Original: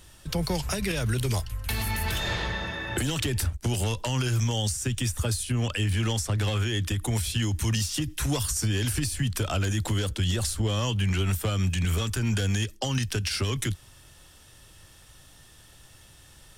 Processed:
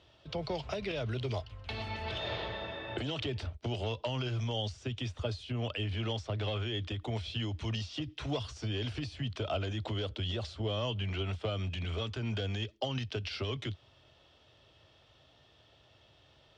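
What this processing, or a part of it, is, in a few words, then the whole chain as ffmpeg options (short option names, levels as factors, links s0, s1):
guitar cabinet: -af "highpass=87,equalizer=f=180:t=q:w=4:g=-7,equalizer=f=430:t=q:w=4:g=4,equalizer=f=640:t=q:w=4:g=9,equalizer=f=1700:t=q:w=4:g=-6,equalizer=f=3200:t=q:w=4:g=3,lowpass=f=4300:w=0.5412,lowpass=f=4300:w=1.3066,volume=0.422"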